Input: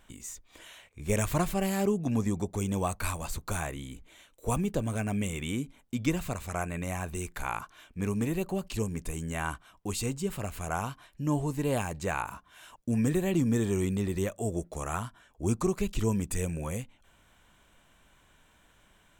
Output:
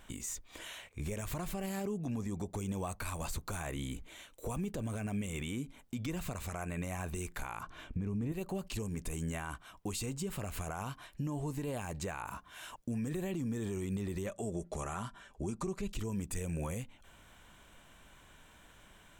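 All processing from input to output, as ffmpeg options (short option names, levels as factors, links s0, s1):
-filter_complex "[0:a]asettb=1/sr,asplit=3[s0][s1][s2];[s0]atrim=end=7.634[s3];[s1]atrim=start=7.63:end=8.32,asetpts=PTS-STARTPTS,afade=t=in:d=0.004:c=qsin,afade=t=out:st=0.686:d=0.004:c=qsin,lowpass=f=3700:p=1,lowshelf=f=390:g=11.5[s4];[s2]atrim=start=8.316[s5];[s3][s4]acrossfade=d=0.004:c1=hsin:c2=qsin[s6];[s6][s5]acrossfade=d=0.004:c1=qsin:c2=hsin,asettb=1/sr,asplit=3[s7][s8][s9];[s7]atrim=end=14.264[s10];[s8]atrim=start=14.26:end=15.93,asetpts=PTS-STARTPTS,afade=t=in:d=0.004:c=qsin,afade=t=out:st=1.666:d=0.004:c=qsin,lowpass=10000,aecho=1:1:5.1:0.36,atrim=end_sample=73647[s11];[s9]atrim=start=15.926[s12];[s10][s11]acrossfade=d=0.004:c1=hsin:c2=qsin[s13];[s13][s12]acrossfade=d=0.004:c1=qsin:c2=hsin,acompressor=threshold=0.0141:ratio=3,alimiter=level_in=2.51:limit=0.0631:level=0:latency=1:release=34,volume=0.398,volume=1.5"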